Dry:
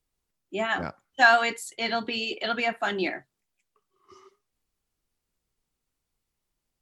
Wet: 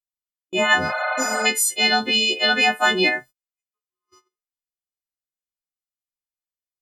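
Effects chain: frequency quantiser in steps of 3 st; gate -46 dBFS, range -33 dB; spectral repair 0.91–1.43, 530–4700 Hz before; gain +7 dB

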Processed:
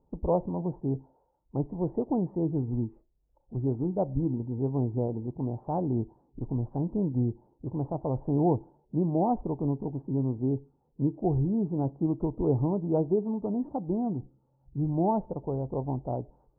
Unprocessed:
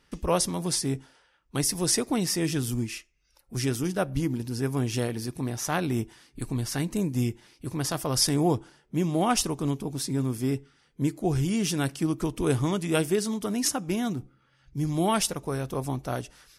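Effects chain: Chebyshev low-pass 910 Hz, order 5

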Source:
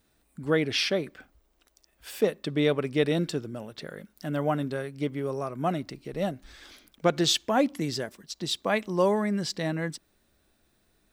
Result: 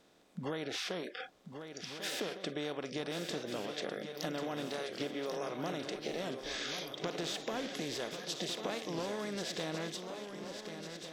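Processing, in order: per-bin compression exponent 0.4; spectral noise reduction 25 dB; compressor 6:1, threshold -31 dBFS, peak gain reduction 16.5 dB; on a send: swung echo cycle 1.451 s, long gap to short 3:1, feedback 55%, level -8.5 dB; on the sum: record warp 45 rpm, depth 100 cents; gain -5.5 dB

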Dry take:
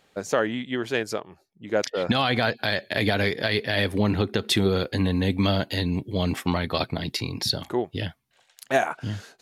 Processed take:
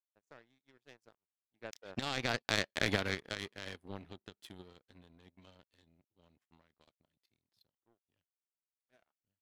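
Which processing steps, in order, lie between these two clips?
Doppler pass-by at 2.68, 21 m/s, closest 9.6 m; power-law curve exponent 2; gain -1 dB

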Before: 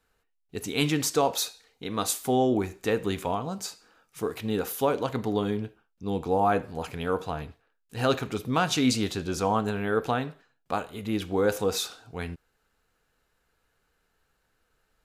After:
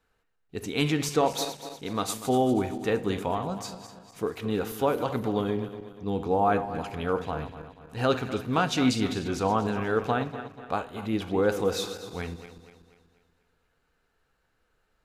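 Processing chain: regenerating reverse delay 0.121 s, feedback 66%, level -11 dB; high shelf 5700 Hz -8.5 dB

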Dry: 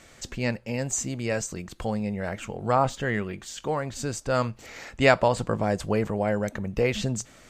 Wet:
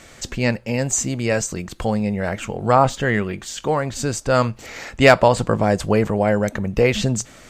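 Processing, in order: hard clip -9 dBFS, distortion -27 dB; gain +7.5 dB

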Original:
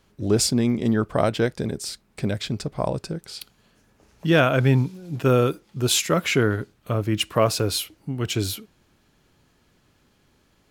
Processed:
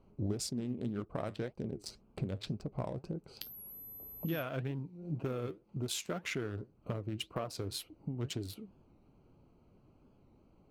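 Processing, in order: Wiener smoothing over 25 samples; compressor 10:1, threshold -34 dBFS, peak gain reduction 21 dB; 3.41–4.41 whine 12000 Hz -46 dBFS; flange 1.9 Hz, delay 2.5 ms, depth 8.4 ms, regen +72%; record warp 45 rpm, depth 100 cents; gain +4 dB

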